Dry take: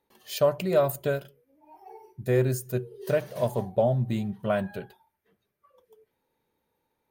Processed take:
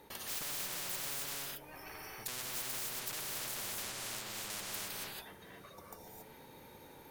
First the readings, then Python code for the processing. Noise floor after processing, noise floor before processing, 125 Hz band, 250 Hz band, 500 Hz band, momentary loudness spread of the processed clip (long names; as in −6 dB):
−56 dBFS, −79 dBFS, −25.5 dB, −21.5 dB, −26.0 dB, 16 LU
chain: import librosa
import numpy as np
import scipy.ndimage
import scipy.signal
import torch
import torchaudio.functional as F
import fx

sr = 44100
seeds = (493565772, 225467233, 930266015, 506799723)

y = fx.spec_erase(x, sr, start_s=5.7, length_s=0.28, low_hz=950.0, high_hz=3500.0)
y = fx.tube_stage(y, sr, drive_db=38.0, bias=0.3)
y = fx.rev_gated(y, sr, seeds[0], gate_ms=300, shape='rising', drr_db=-2.5)
y = fx.spectral_comp(y, sr, ratio=10.0)
y = y * 10.0 ** (-1.5 / 20.0)